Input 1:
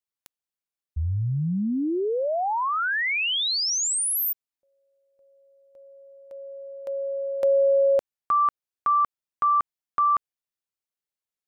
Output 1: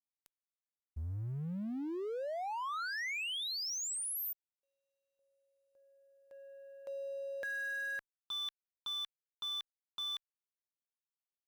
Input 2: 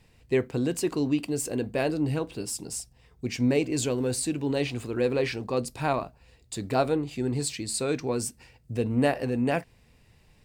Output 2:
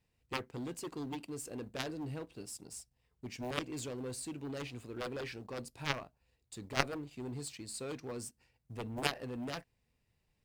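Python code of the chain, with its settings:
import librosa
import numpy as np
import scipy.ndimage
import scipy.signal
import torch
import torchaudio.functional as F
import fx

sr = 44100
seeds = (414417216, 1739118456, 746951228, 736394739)

y = fx.law_mismatch(x, sr, coded='A')
y = fx.dynamic_eq(y, sr, hz=1600.0, q=2.5, threshold_db=-38.0, ratio=4.0, max_db=4)
y = fx.cheby_harmonics(y, sr, harmonics=(3, 5), levels_db=(-7, -35), full_scale_db=-10.0)
y = y * librosa.db_to_amplitude(1.5)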